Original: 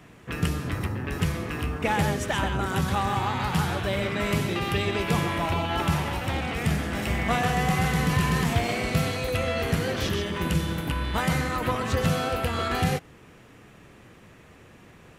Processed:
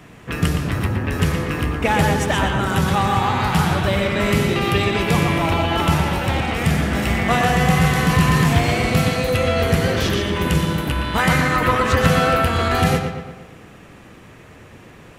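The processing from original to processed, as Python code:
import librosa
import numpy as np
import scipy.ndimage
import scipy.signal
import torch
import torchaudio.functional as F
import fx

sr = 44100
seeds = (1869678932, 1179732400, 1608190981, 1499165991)

y = fx.peak_eq(x, sr, hz=1700.0, db=5.0, octaves=1.2, at=(11.19, 12.42))
y = fx.echo_filtered(y, sr, ms=117, feedback_pct=54, hz=4000.0, wet_db=-6)
y = y * librosa.db_to_amplitude(6.5)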